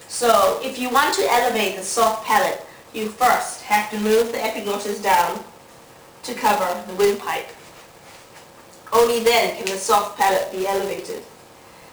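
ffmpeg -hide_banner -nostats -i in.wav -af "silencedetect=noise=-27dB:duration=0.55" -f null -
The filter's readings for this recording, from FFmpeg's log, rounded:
silence_start: 5.41
silence_end: 6.24 | silence_duration: 0.83
silence_start: 7.50
silence_end: 8.87 | silence_duration: 1.37
silence_start: 11.19
silence_end: 11.93 | silence_duration: 0.73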